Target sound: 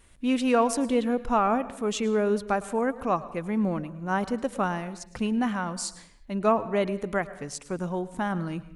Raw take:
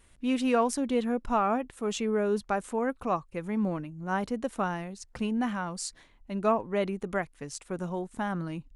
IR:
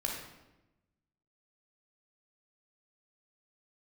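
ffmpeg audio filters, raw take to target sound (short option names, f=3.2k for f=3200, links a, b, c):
-filter_complex "[0:a]asplit=2[a][b];[1:a]atrim=start_sample=2205,afade=t=out:st=0.31:d=0.01,atrim=end_sample=14112,adelay=107[c];[b][c]afir=irnorm=-1:irlink=0,volume=-19dB[d];[a][d]amix=inputs=2:normalize=0,volume=3dB"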